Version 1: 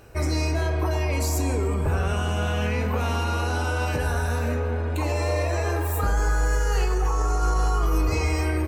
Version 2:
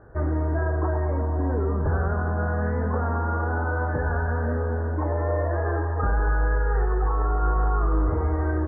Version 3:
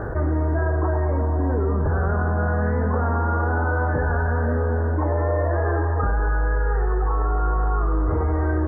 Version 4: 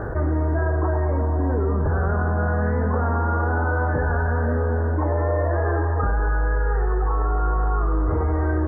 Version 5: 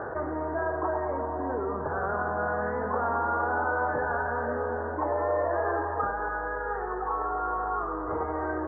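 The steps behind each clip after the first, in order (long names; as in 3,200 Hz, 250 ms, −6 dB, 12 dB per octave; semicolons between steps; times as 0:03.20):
Butterworth low-pass 1,800 Hz 96 dB per octave
envelope flattener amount 70%
no processing that can be heard
resonant band-pass 930 Hz, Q 0.87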